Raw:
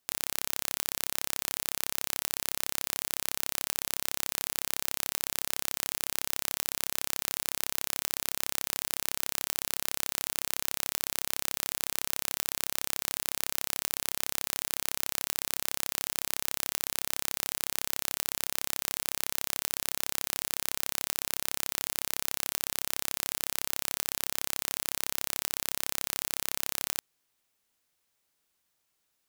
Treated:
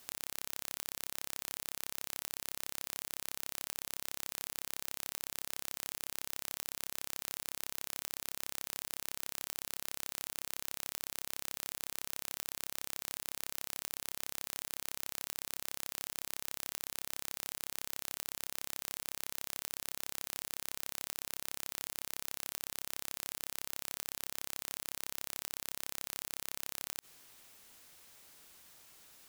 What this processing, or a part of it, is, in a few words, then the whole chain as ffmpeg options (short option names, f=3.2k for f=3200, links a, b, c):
de-esser from a sidechain: -filter_complex "[0:a]asplit=2[a][b];[b]highpass=f=4.7k:p=1,apad=whole_len=1291583[c];[a][c]sidechaincompress=threshold=-53dB:ratio=4:attack=1.4:release=30,volume=18dB"